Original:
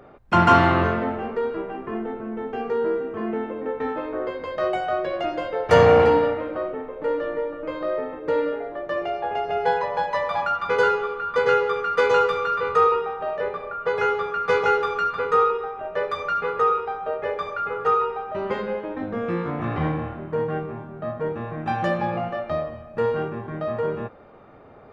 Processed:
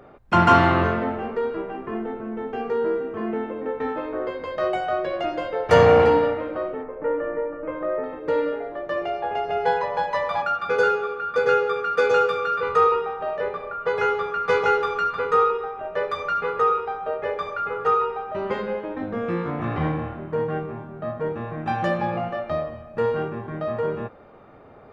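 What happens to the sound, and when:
6.83–8.04 s: low-pass 2.2 kHz 24 dB/octave
10.42–12.63 s: comb of notches 1 kHz

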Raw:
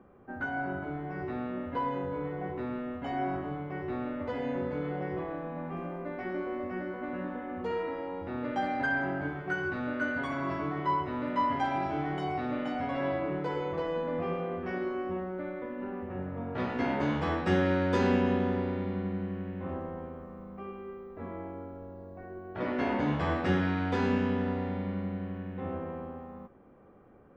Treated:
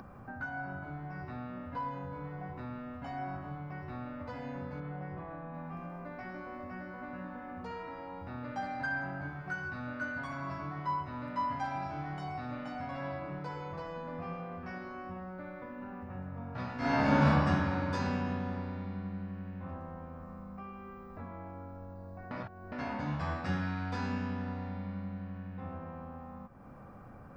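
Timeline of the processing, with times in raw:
4.80–5.54 s: distance through air 240 m
16.77–17.25 s: reverb throw, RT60 2.6 s, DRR -11.5 dB
22.31–22.72 s: reverse
whole clip: peaking EQ 390 Hz -14.5 dB 0.91 oct; upward compressor, threshold -35 dBFS; graphic EQ with 31 bands 125 Hz +5 dB, 2 kHz -5 dB, 3.15 kHz -8 dB, 5 kHz +6 dB; trim -3 dB

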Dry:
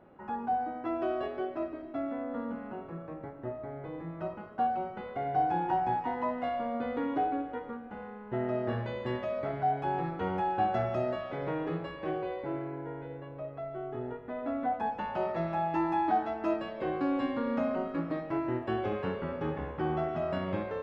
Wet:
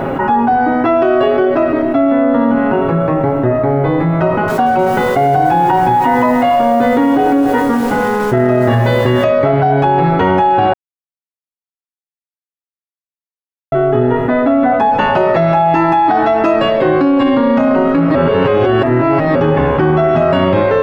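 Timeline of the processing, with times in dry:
4.19–9.24 s: bit-crushed delay 289 ms, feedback 35%, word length 8-bit, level -14 dB
10.73–13.72 s: mute
18.15–19.35 s: reverse
whole clip: comb 7.4 ms, depth 48%; loudness maximiser +24.5 dB; level flattener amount 70%; trim -4.5 dB

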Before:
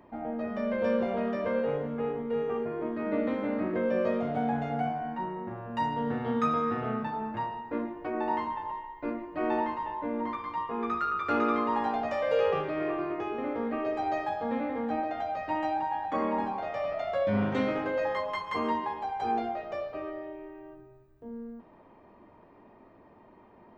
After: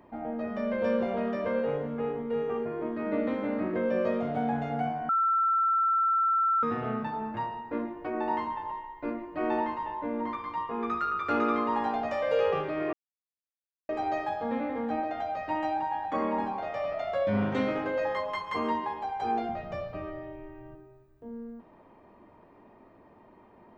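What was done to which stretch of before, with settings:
5.09–6.63 s: bleep 1.34 kHz -22 dBFS
12.93–13.89 s: mute
19.49–20.75 s: resonant low shelf 240 Hz +11.5 dB, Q 1.5

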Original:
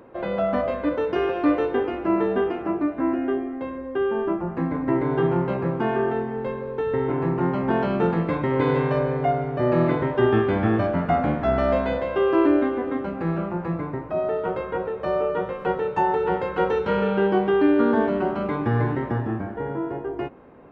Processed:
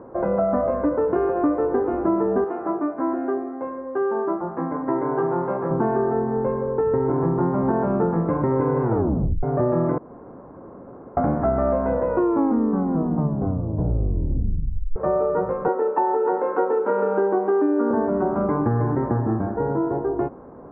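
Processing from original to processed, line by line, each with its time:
2.44–5.71 s: high-pass 640 Hz 6 dB/octave
8.82 s: tape stop 0.61 s
9.98–11.17 s: room tone
11.91 s: tape stop 3.05 s
15.68–17.91 s: steep high-pass 230 Hz 48 dB/octave
whole clip: low-pass 1.3 kHz 24 dB/octave; compression, threshold -24 dBFS; trim +6.5 dB

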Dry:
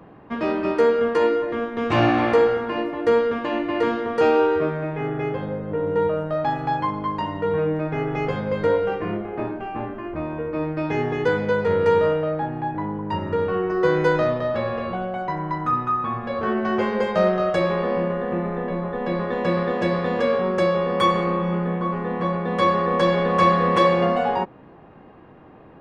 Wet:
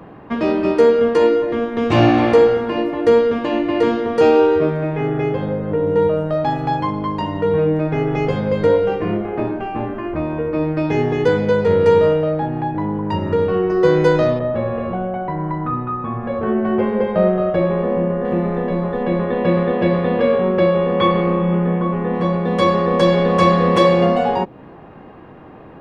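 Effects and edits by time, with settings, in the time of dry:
14.39–18.25 s: distance through air 500 m
19.03–22.14 s: low-pass 3.3 kHz 24 dB/octave
whole clip: dynamic bell 1.4 kHz, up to -7 dB, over -36 dBFS, Q 0.78; trim +7 dB

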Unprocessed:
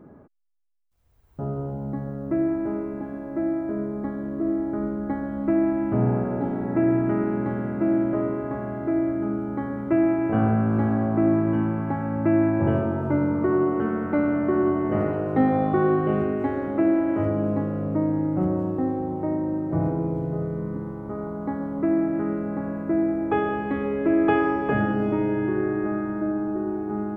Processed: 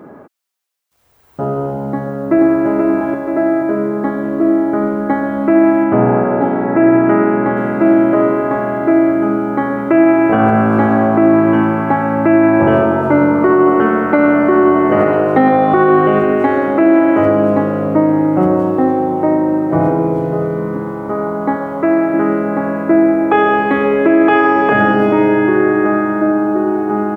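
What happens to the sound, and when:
1.89–2.66 s: echo throw 480 ms, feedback 50%, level -3.5 dB
5.84–7.57 s: tone controls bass -1 dB, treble -14 dB
21.56–22.14 s: peaking EQ 240 Hz -9.5 dB 0.72 oct
whole clip: high-pass 550 Hz 6 dB/octave; loudness maximiser +19 dB; trim -1 dB

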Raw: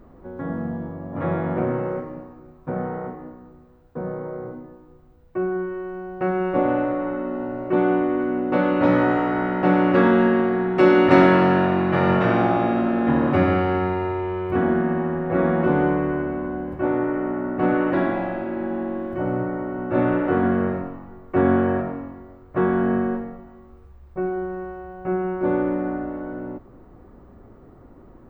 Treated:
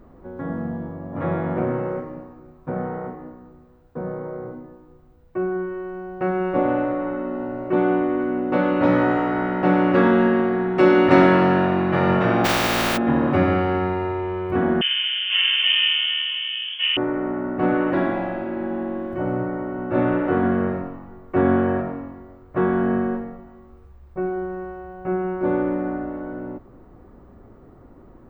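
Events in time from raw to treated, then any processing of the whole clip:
12.44–12.96 s: spectral contrast reduction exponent 0.3
14.81–16.97 s: frequency inversion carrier 3.3 kHz

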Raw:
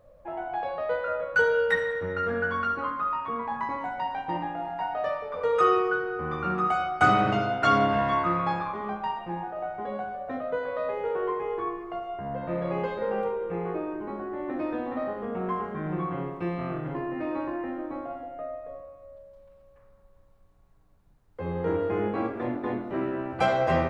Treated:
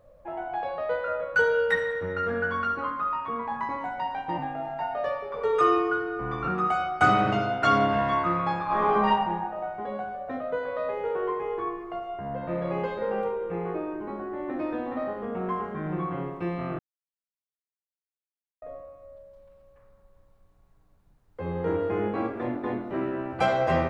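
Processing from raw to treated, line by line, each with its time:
4.38–6.48 s: frequency shift -28 Hz
8.65–9.10 s: reverb throw, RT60 1.2 s, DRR -9.5 dB
16.79–18.62 s: mute

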